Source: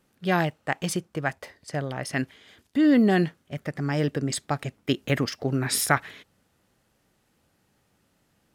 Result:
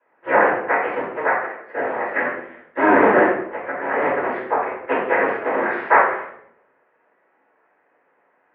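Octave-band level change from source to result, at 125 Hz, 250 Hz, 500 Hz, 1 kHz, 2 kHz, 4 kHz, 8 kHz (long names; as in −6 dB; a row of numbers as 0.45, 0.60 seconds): −14.5 dB, −1.5 dB, +10.0 dB, +13.0 dB, +10.5 dB, below −10 dB, below −40 dB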